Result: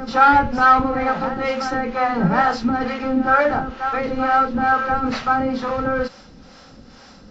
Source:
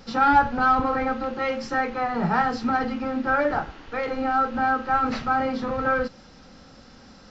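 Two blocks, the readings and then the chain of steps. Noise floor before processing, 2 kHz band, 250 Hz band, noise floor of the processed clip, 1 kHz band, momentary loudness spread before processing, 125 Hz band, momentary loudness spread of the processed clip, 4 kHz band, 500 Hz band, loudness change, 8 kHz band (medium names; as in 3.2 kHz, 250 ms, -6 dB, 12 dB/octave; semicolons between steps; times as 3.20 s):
-49 dBFS, +5.0 dB, +5.0 dB, -45 dBFS, +5.0 dB, 8 LU, +6.0 dB, 9 LU, +5.5 dB, +4.5 dB, +5.0 dB, no reading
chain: reverse echo 1080 ms -8 dB; harmonic tremolo 2.2 Hz, depth 70%, crossover 470 Hz; trim +7.5 dB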